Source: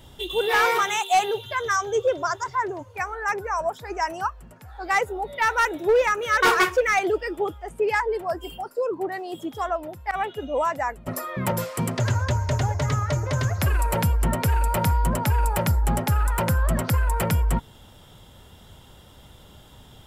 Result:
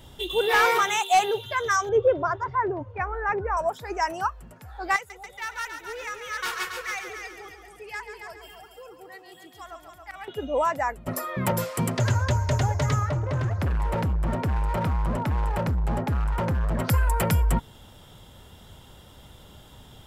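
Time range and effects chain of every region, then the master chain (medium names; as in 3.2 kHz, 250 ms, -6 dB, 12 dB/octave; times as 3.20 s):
1.89–3.57 s: low-pass 2.6 kHz + tilt EQ -2 dB/octave
4.96–10.28 s: amplifier tone stack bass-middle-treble 5-5-5 + multi-head delay 138 ms, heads first and second, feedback 42%, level -9 dB
13.09–16.80 s: low-pass 1.2 kHz 6 dB/octave + hard clipper -22 dBFS
whole clip: none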